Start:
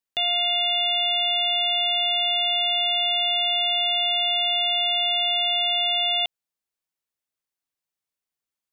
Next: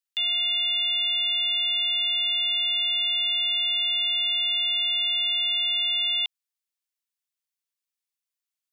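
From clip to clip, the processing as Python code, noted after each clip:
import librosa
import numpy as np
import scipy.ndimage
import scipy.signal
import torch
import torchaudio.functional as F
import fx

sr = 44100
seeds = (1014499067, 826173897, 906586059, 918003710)

y = scipy.signal.sosfilt(scipy.signal.butter(6, 1000.0, 'highpass', fs=sr, output='sos'), x)
y = fx.peak_eq(y, sr, hz=1300.0, db=-6.5, octaves=1.4)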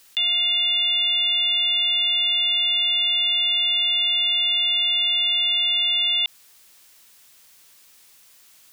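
y = fx.env_flatten(x, sr, amount_pct=50)
y = F.gain(torch.from_numpy(y), 4.0).numpy()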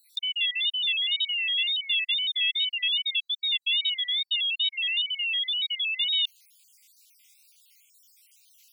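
y = fx.spec_dropout(x, sr, seeds[0], share_pct=52)
y = fx.brickwall_highpass(y, sr, low_hz=2100.0)
y = fx.wow_flutter(y, sr, seeds[1], rate_hz=2.1, depth_cents=120.0)
y = F.gain(torch.from_numpy(y), -3.0).numpy()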